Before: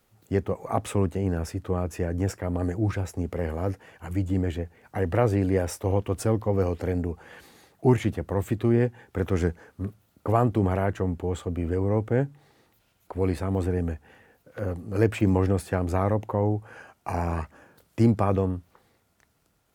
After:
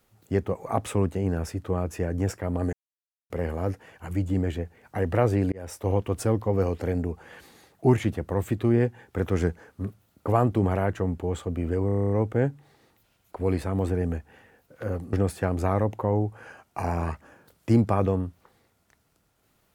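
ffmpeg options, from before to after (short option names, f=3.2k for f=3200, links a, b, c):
-filter_complex "[0:a]asplit=13[a][b][c][d][e][f][g][h][i][j][k][l][m];[a]atrim=end=2.73,asetpts=PTS-STARTPTS,afade=t=out:st=2.726:d=0.004:c=hsin[n];[b]atrim=start=2.73:end=3.3,asetpts=PTS-STARTPTS,volume=0[o];[c]atrim=start=3.3:end=5.52,asetpts=PTS-STARTPTS,afade=t=in:d=0.004:c=hsin,afade=t=out:st=2.216:d=0.004:c=hsin[p];[d]atrim=start=5.52:end=11.892,asetpts=PTS-STARTPTS,afade=t=in:d=0.36[q];[e]atrim=start=11.858:end=11.892[r];[f]atrim=start=11.858:end=11.892[s];[g]atrim=start=11.858:end=11.892[t];[h]atrim=start=11.858:end=11.892[u];[i]atrim=start=11.858:end=11.892[v];[j]atrim=start=11.858:end=11.892[w];[k]atrim=start=11.858:end=11.892[x];[l]atrim=start=11.858:end=14.892[y];[m]atrim=start=15.428[z];[n][o][p][q]concat=n=4:v=0:a=1[aa];[aa][r]acrossfade=d=0.004:c1=hsin:c2=hsin[ab];[ab][s]acrossfade=d=0.004:c1=hsin:c2=hsin[ac];[ac][t]acrossfade=d=0.004:c1=hsin:c2=hsin[ad];[ad][u]acrossfade=d=0.004:c1=hsin:c2=hsin[ae];[ae][v]acrossfade=d=0.004:c1=hsin:c2=hsin[af];[af][w]acrossfade=d=0.004:c1=hsin:c2=hsin[ag];[ag][x]acrossfade=d=0.004:c1=hsin:c2=hsin[ah];[ah][y]acrossfade=d=0.004:c1=hsin:c2=hsin[ai];[ai][z]acrossfade=d=0.004:c1=hsin:c2=hsin"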